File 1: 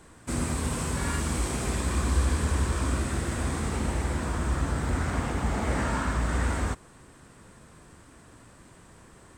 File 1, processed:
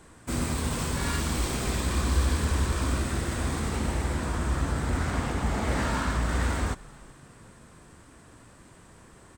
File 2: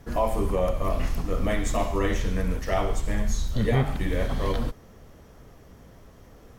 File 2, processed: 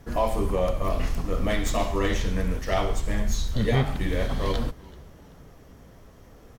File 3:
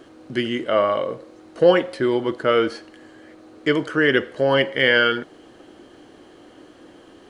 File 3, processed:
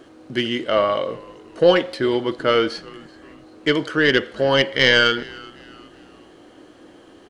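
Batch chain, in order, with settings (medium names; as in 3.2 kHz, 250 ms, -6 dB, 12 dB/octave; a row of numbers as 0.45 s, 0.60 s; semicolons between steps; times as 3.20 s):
tracing distortion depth 0.037 ms; dynamic bell 4.1 kHz, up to +8 dB, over -45 dBFS, Q 1.2; frequency-shifting echo 382 ms, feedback 38%, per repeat -100 Hz, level -23 dB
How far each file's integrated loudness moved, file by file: 0.0 LU, 0.0 LU, +1.0 LU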